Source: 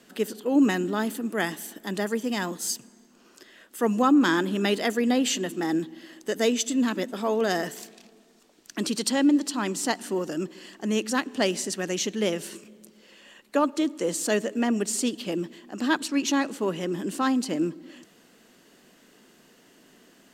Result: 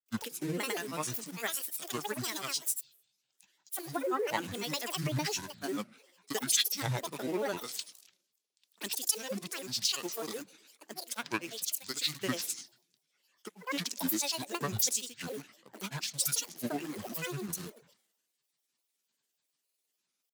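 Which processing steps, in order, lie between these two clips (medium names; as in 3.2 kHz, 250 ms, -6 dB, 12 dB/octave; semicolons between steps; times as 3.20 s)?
in parallel at -12 dB: bit crusher 5-bit; on the sum: RIAA curve recording; compression 8:1, threshold -24 dBFS, peak gain reduction 15 dB; granulator, pitch spread up and down by 12 st; three bands expanded up and down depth 100%; trim -5.5 dB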